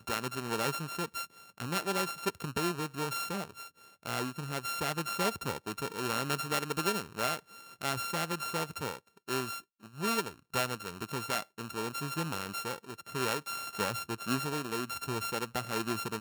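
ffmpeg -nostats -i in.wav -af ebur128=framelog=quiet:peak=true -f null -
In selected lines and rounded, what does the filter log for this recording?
Integrated loudness:
  I:         -34.6 LUFS
  Threshold: -44.8 LUFS
Loudness range:
  LRA:         2.1 LU
  Threshold: -54.8 LUFS
  LRA low:   -35.6 LUFS
  LRA high:  -33.5 LUFS
True peak:
  Peak:      -13.9 dBFS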